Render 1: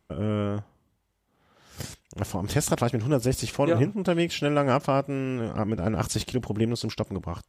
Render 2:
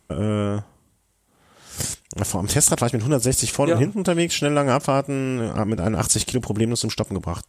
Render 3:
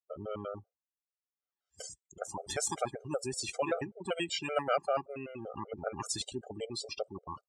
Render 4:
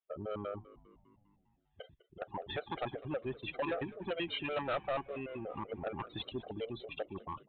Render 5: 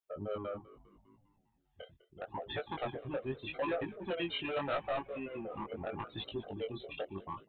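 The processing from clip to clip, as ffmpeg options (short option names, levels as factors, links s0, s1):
-filter_complex "[0:a]equalizer=f=8800:t=o:w=1:g=13,asplit=2[s0][s1];[s1]acompressor=threshold=0.0355:ratio=6,volume=0.891[s2];[s0][s2]amix=inputs=2:normalize=0,volume=1.19"
-filter_complex "[0:a]afftdn=nr=35:nf=-31,acrossover=split=440 6600:gain=0.158 1 0.141[s0][s1][s2];[s0][s1][s2]amix=inputs=3:normalize=0,afftfilt=real='re*gt(sin(2*PI*5.2*pts/sr)*(1-2*mod(floor(b*sr/1024/400),2)),0)':imag='im*gt(sin(2*PI*5.2*pts/sr)*(1-2*mod(floor(b*sr/1024/400),2)),0)':win_size=1024:overlap=0.75,volume=0.501"
-filter_complex "[0:a]aresample=8000,asoftclip=type=tanh:threshold=0.0282,aresample=44100,asplit=7[s0][s1][s2][s3][s4][s5][s6];[s1]adelay=201,afreqshift=-77,volume=0.112[s7];[s2]adelay=402,afreqshift=-154,volume=0.0692[s8];[s3]adelay=603,afreqshift=-231,volume=0.0432[s9];[s4]adelay=804,afreqshift=-308,volume=0.0266[s10];[s5]adelay=1005,afreqshift=-385,volume=0.0166[s11];[s6]adelay=1206,afreqshift=-462,volume=0.0102[s12];[s0][s7][s8][s9][s10][s11][s12]amix=inputs=7:normalize=0,volume=1.12"
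-af "flanger=delay=17.5:depth=6.3:speed=0.8,volume=1.41"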